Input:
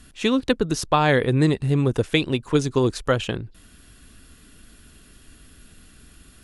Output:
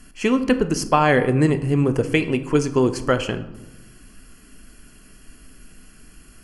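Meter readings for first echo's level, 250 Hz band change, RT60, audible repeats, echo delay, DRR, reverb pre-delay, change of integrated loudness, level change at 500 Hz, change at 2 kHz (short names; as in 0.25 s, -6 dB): none, +2.5 dB, 1.0 s, none, none, 9.0 dB, 3 ms, +1.5 dB, +2.0 dB, +2.0 dB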